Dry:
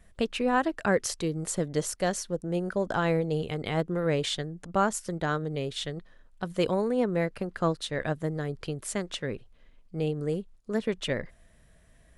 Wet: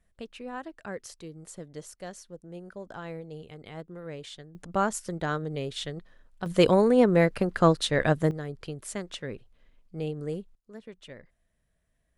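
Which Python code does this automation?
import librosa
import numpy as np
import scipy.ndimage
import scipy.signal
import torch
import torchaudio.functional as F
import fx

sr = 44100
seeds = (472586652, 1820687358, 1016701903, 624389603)

y = fx.gain(x, sr, db=fx.steps((0.0, -13.0), (4.55, -1.0), (6.46, 6.5), (8.31, -3.5), (10.55, -16.0)))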